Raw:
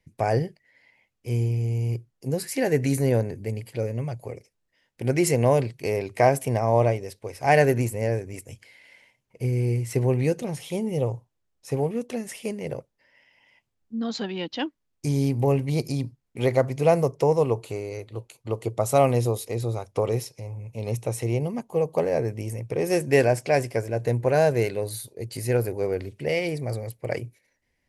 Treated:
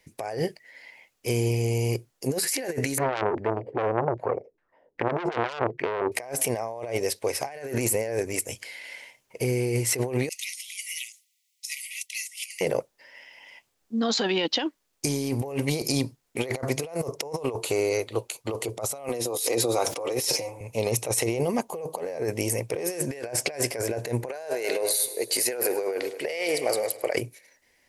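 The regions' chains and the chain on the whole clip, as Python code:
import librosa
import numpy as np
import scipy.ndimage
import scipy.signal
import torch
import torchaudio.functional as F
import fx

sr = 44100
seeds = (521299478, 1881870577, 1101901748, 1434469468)

y = fx.chain(x, sr, fx.filter_lfo_lowpass(shape='saw_down', hz=2.5, low_hz=320.0, high_hz=2000.0, q=3.6),
    fx.transformer_sat(knee_hz=2700.0), at=(2.98, 6.12))
y = fx.chain(y, sr, fx.brickwall_highpass(low_hz=1900.0),
    fx.over_compress(threshold_db=-48.0, ratio=-0.5), at=(10.29, 12.61))
y = fx.chain(y, sr, fx.highpass(hz=150.0, slope=24),
    fx.notch_comb(f0_hz=210.0),
    fx.sustainer(db_per_s=59.0), at=(19.09, 20.61))
y = fx.chain(y, sr, fx.highpass(hz=370.0, slope=12),
    fx.echo_feedback(ms=104, feedback_pct=52, wet_db=-17.0), at=(24.29, 27.15))
y = fx.bass_treble(y, sr, bass_db=-14, treble_db=4)
y = fx.over_compress(y, sr, threshold_db=-34.0, ratio=-1.0)
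y = F.gain(torch.from_numpy(y), 5.5).numpy()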